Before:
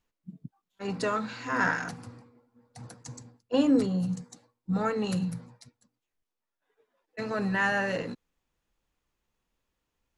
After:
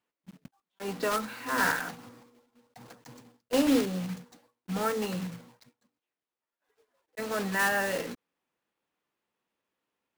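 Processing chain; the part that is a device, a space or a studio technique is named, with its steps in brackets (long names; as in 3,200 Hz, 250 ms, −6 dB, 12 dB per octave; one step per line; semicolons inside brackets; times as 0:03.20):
early digital voice recorder (band-pass filter 230–3,400 Hz; one scale factor per block 3 bits)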